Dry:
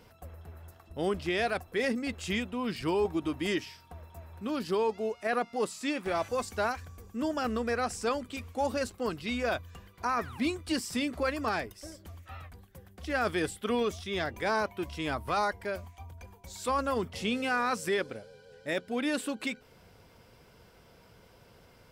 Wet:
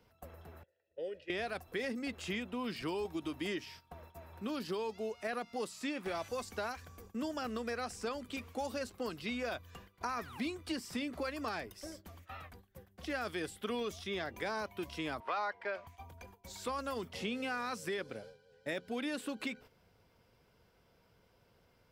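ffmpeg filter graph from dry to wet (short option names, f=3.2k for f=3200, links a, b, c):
-filter_complex "[0:a]asettb=1/sr,asplit=3[a][b][c];[a]atrim=end=0.634[d];[b]atrim=start=0.63:end=1.3,asetpts=PTS-STARTPTS,afade=t=in:d=0.004:c=qsin,afade=t=out:st=0.666:d=0.004:c=qsin,asplit=3[e][f][g];[e]bandpass=f=530:t=q:w=8,volume=0dB[h];[f]bandpass=f=1.84k:t=q:w=8,volume=-6dB[i];[g]bandpass=f=2.48k:t=q:w=8,volume=-9dB[j];[h][i][j]amix=inputs=3:normalize=0,bass=f=250:g=3,treble=f=4k:g=7,aecho=1:1:2.1:0.42,atrim=end_sample=29547[k];[c]atrim=start=1.296[l];[d][k]acrossfade=d=0.004:c1=hsin:c2=qsin[m];[m][l]acrossfade=d=0.004:c1=qsin:c2=hsin,asettb=1/sr,asplit=3[n][o][p];[n]atrim=end=15.204[q];[o]atrim=start=15.2:end=15.87,asetpts=PTS-STARTPTS,afade=t=in:d=0.004:c=qsin,afade=t=out:st=0.666:d=0.004:c=qsin,highpass=590,lowpass=2.2k,acontrast=86[r];[p]atrim=start=15.866[s];[q][r]acrossfade=d=0.004:c1=hsin:c2=qsin[t];[t][s]acrossfade=d=0.004:c1=qsin:c2=hsin,agate=range=-11dB:threshold=-50dB:ratio=16:detection=peak,equalizer=f=8.4k:t=o:w=0.74:g=-3.5,acrossover=split=170|2800[u][v][w];[u]acompressor=threshold=-56dB:ratio=4[x];[v]acompressor=threshold=-37dB:ratio=4[y];[w]acompressor=threshold=-48dB:ratio=4[z];[x][y][z]amix=inputs=3:normalize=0"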